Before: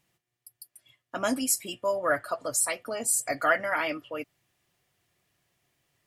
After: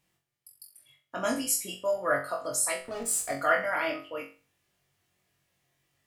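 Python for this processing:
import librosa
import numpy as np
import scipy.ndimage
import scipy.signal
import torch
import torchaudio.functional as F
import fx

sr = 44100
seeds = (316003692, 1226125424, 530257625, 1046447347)

y = fx.backlash(x, sr, play_db=-32.5, at=(2.79, 3.32), fade=0.02)
y = fx.room_flutter(y, sr, wall_m=3.7, rt60_s=0.35)
y = y * 10.0 ** (-3.5 / 20.0)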